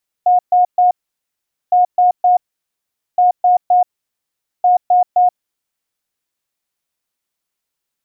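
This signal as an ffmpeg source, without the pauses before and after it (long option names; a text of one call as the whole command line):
ffmpeg -f lavfi -i "aevalsrc='0.422*sin(2*PI*722*t)*clip(min(mod(mod(t,1.46),0.26),0.13-mod(mod(t,1.46),0.26))/0.005,0,1)*lt(mod(t,1.46),0.78)':duration=5.84:sample_rate=44100" out.wav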